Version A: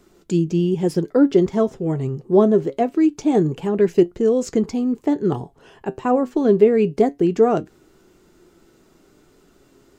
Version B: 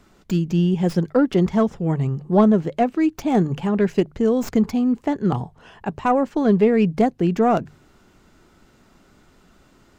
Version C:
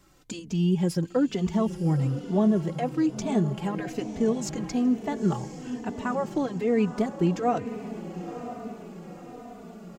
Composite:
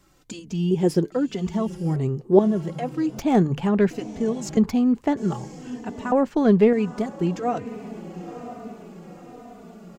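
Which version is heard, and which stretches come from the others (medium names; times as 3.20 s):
C
0.71–1.12 s: from A
1.96–2.39 s: from A
3.19–3.91 s: from B
4.57–5.17 s: from B
6.12–6.73 s: from B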